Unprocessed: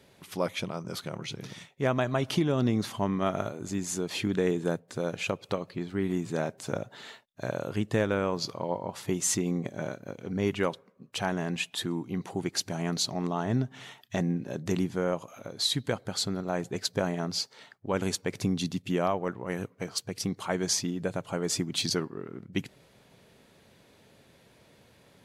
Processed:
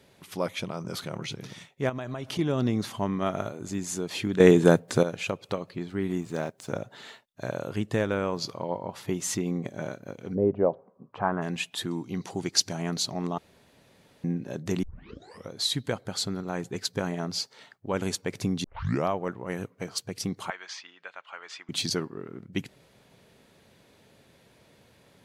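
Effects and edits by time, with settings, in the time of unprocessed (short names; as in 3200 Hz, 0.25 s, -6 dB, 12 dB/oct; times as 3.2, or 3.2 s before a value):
0.69–1.35 fast leveller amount 50%
1.89–2.39 compressor 10:1, threshold -30 dBFS
4.4–5.03 gain +11 dB
6.21–6.7 G.711 law mismatch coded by A
8.63–9.63 bell 8200 Hz -5 dB 1.1 oct
10.34–11.41 synth low-pass 480 Hz -> 1300 Hz, resonance Q 3
11.91–12.73 bell 5300 Hz +9 dB 1.1 oct
13.38–14.24 room tone
14.83 tape start 0.68 s
16.29–17.12 bell 620 Hz -6.5 dB 0.38 oct
18.64 tape start 0.42 s
20.5–21.69 Butterworth band-pass 1900 Hz, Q 0.84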